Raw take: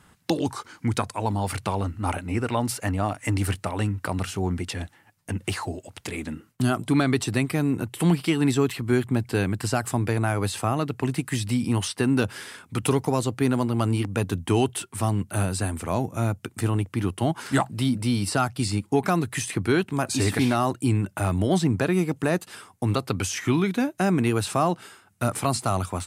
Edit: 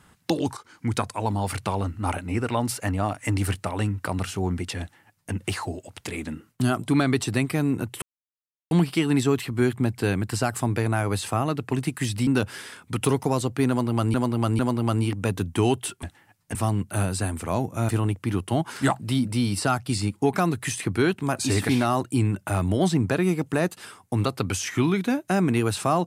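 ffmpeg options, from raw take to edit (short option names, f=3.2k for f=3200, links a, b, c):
-filter_complex "[0:a]asplit=9[a][b][c][d][e][f][g][h][i];[a]atrim=end=0.57,asetpts=PTS-STARTPTS,afade=t=out:st=0.566:d=0.004:c=hsin:silence=0.251189[j];[b]atrim=start=0.57:end=8.02,asetpts=PTS-STARTPTS,afade=t=in:d=0.39:silence=0.251189,afade=t=out:st=7.446:d=0.004:c=hsin,apad=pad_dur=0.69[k];[c]atrim=start=8.02:end=11.582,asetpts=PTS-STARTPTS,afade=t=in:d=0.004:c=hsin[l];[d]atrim=start=12.088:end=13.962[m];[e]atrim=start=13.508:end=13.962[n];[f]atrim=start=13.508:end=14.952[o];[g]atrim=start=4.808:end=5.332[p];[h]atrim=start=14.948:end=16.292[q];[i]atrim=start=16.588[r];[j][k][l]concat=n=3:v=0:a=1[s];[s][m]acrossfade=d=0.004:c1=hsin:c2=hsin[t];[t][n]acrossfade=d=0.004:c1=hsin:c2=hsin[u];[u][o]acrossfade=d=0.004:c1=hsin:c2=hsin[v];[v][p]acrossfade=d=0.004:c1=hsin:c2=hsin[w];[w][q]acrossfade=d=0.004:c1=hsin:c2=hsin[x];[x][r]acrossfade=d=0.004:c1=hsin:c2=hsin"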